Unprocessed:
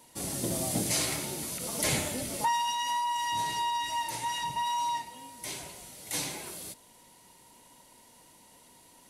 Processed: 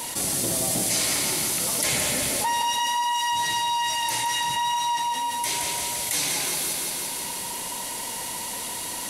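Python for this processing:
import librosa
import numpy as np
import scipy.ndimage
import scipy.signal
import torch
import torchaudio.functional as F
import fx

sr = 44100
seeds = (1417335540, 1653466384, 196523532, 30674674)

y = fx.tilt_shelf(x, sr, db=-4.0, hz=740.0)
y = fx.echo_feedback(y, sr, ms=170, feedback_pct=57, wet_db=-6)
y = fx.env_flatten(y, sr, amount_pct=70)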